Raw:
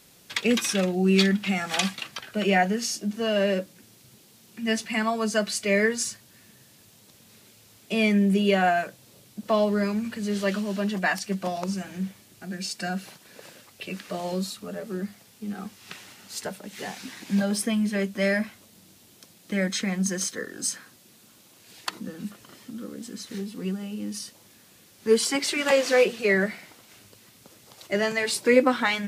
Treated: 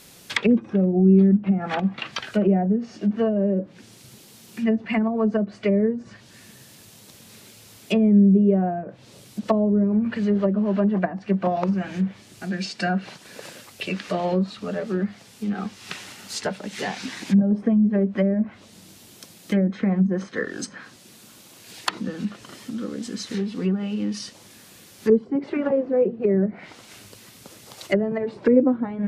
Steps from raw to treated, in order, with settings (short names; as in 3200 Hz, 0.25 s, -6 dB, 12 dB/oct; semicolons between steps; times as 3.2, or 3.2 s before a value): treble ducked by the level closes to 350 Hz, closed at -21 dBFS; gain +7 dB